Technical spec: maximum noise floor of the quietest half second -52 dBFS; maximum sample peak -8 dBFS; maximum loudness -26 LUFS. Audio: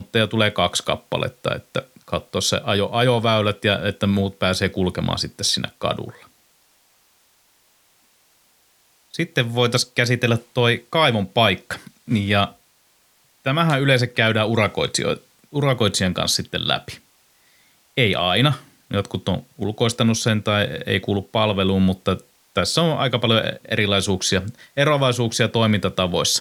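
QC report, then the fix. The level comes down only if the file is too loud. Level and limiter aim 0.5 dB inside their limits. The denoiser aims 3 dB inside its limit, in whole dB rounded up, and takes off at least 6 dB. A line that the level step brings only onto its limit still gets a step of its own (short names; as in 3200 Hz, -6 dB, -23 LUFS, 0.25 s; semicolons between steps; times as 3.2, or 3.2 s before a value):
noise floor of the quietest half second -60 dBFS: OK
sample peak -2.5 dBFS: fail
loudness -20.5 LUFS: fail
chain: gain -6 dB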